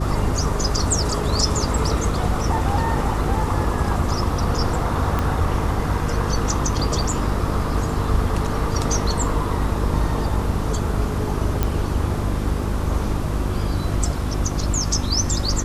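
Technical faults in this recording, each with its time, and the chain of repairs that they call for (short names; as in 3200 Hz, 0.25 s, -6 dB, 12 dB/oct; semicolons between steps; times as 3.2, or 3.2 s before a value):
hum 50 Hz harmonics 7 -25 dBFS
5.19 pop -9 dBFS
11.63 pop -7 dBFS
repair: de-click; de-hum 50 Hz, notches 7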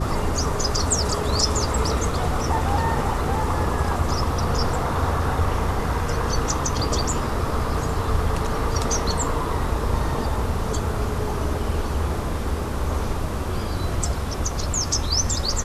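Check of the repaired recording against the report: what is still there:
5.19 pop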